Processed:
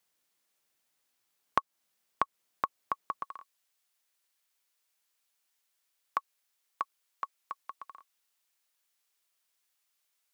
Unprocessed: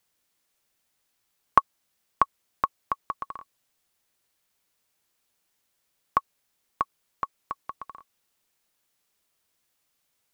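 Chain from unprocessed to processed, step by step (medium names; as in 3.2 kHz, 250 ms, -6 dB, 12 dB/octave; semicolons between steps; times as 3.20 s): high-pass 190 Hz 6 dB/octave, from 3.23 s 1.1 kHz; compression 2.5:1, threshold -23 dBFS, peak gain reduction 8.5 dB; trim -3 dB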